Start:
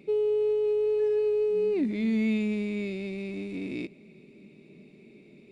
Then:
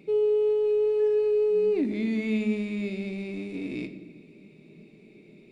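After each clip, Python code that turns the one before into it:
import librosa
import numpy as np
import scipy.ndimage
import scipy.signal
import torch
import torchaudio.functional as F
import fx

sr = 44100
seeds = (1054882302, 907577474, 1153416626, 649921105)

y = fx.room_shoebox(x, sr, seeds[0], volume_m3=440.0, walls='mixed', distance_m=0.53)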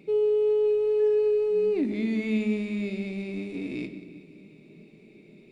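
y = fx.echo_feedback(x, sr, ms=184, feedback_pct=59, wet_db=-17)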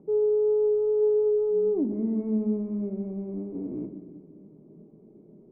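y = scipy.signal.sosfilt(scipy.signal.butter(6, 1100.0, 'lowpass', fs=sr, output='sos'), x)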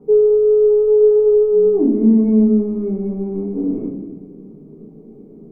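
y = fx.notch(x, sr, hz=600.0, q=12.0)
y = fx.room_shoebox(y, sr, seeds[1], volume_m3=41.0, walls='mixed', distance_m=1.8)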